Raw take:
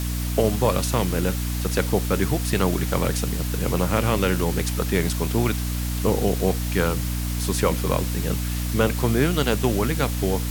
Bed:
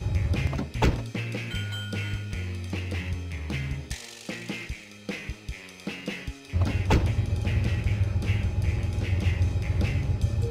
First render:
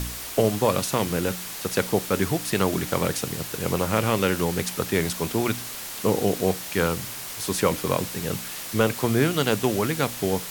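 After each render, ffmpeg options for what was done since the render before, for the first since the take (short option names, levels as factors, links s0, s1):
-af "bandreject=f=60:t=h:w=4,bandreject=f=120:t=h:w=4,bandreject=f=180:t=h:w=4,bandreject=f=240:t=h:w=4,bandreject=f=300:t=h:w=4"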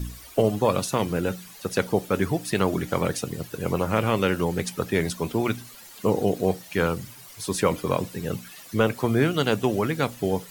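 -af "afftdn=nr=14:nf=-35"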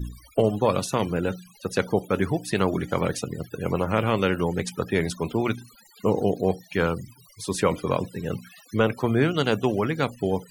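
-af "afftfilt=real='re*gte(hypot(re,im),0.00891)':imag='im*gte(hypot(re,im),0.00891)':win_size=1024:overlap=0.75,highshelf=f=12000:g=-7"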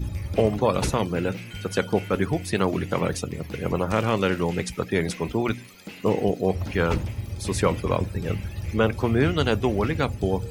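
-filter_complex "[1:a]volume=0.531[s0];[0:a][s0]amix=inputs=2:normalize=0"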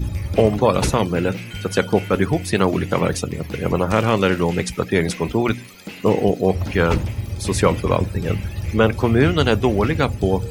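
-af "volume=1.88"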